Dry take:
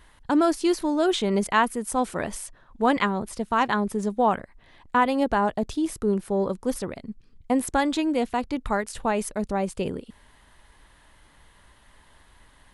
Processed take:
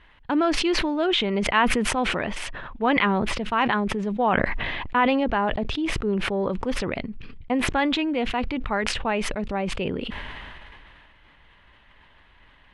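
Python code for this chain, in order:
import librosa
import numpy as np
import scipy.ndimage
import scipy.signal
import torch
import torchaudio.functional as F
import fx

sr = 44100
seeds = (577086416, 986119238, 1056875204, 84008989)

y = fx.lowpass_res(x, sr, hz=2700.0, q=2.2)
y = fx.sustainer(y, sr, db_per_s=22.0)
y = y * librosa.db_to_amplitude(-2.0)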